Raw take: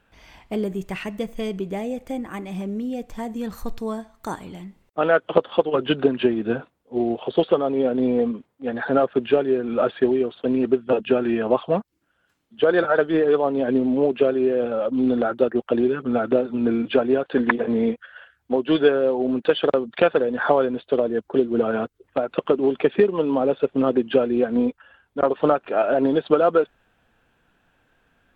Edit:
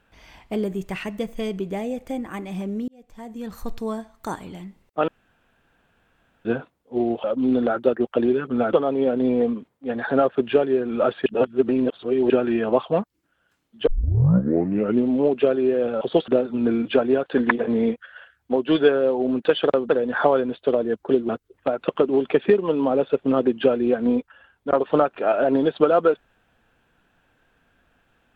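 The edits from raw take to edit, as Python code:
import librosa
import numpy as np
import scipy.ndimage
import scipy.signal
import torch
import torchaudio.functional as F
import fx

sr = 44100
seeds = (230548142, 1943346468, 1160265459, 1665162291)

y = fx.edit(x, sr, fx.fade_in_span(start_s=2.88, length_s=0.89),
    fx.room_tone_fill(start_s=5.08, length_s=1.37),
    fx.swap(start_s=7.24, length_s=0.27, other_s=14.79, other_length_s=1.49),
    fx.reverse_span(start_s=10.04, length_s=1.04),
    fx.tape_start(start_s=12.65, length_s=1.19),
    fx.cut(start_s=19.89, length_s=0.25),
    fx.cut(start_s=21.54, length_s=0.25), tone=tone)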